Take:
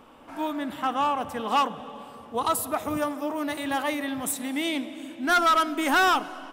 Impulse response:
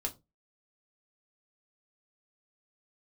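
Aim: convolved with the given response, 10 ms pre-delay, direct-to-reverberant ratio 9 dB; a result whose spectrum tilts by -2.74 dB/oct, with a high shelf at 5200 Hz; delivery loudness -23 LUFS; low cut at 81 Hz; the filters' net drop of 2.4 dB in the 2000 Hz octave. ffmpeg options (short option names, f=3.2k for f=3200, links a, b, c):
-filter_complex "[0:a]highpass=81,equalizer=f=2k:t=o:g=-4.5,highshelf=f=5.2k:g=5.5,asplit=2[a][b];[1:a]atrim=start_sample=2205,adelay=10[c];[b][c]afir=irnorm=-1:irlink=0,volume=-10.5dB[d];[a][d]amix=inputs=2:normalize=0,volume=2.5dB"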